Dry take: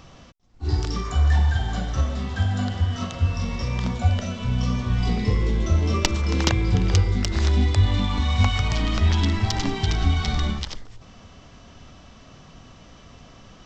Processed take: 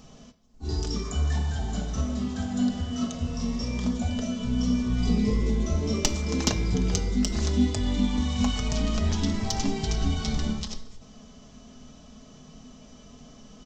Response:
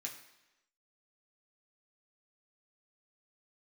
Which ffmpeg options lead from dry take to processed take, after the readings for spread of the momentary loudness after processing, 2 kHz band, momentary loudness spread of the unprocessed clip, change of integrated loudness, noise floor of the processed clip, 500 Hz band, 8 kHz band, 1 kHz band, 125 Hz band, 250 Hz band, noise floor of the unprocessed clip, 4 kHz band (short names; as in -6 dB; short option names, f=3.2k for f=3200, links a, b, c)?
5 LU, -8.0 dB, 6 LU, -4.5 dB, -50 dBFS, -2.0 dB, n/a, -7.0 dB, -8.0 dB, +2.0 dB, -48 dBFS, -4.0 dB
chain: -filter_complex "[0:a]equalizer=f=1.8k:w=0.62:g=-12,aecho=1:1:4.7:0.61,asplit=2[a][b];[1:a]atrim=start_sample=2205,asetrate=38808,aresample=44100[c];[b][c]afir=irnorm=-1:irlink=0,volume=-1.5dB[d];[a][d]amix=inputs=2:normalize=0,volume=-2.5dB"